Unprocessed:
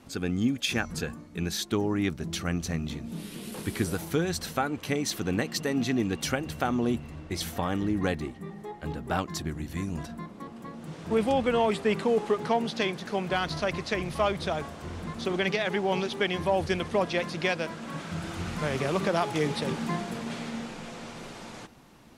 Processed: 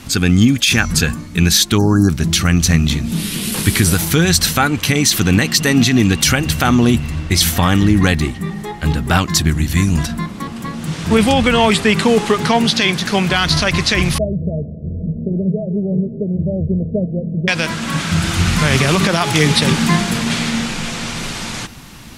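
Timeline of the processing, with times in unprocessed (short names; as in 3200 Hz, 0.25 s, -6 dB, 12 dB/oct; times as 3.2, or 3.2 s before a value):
1.78–2.1 spectral delete 1700–4000 Hz
14.18–17.48 rippled Chebyshev low-pass 660 Hz, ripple 9 dB
whole clip: bell 520 Hz -13 dB 2.6 oct; maximiser +24 dB; gain -1 dB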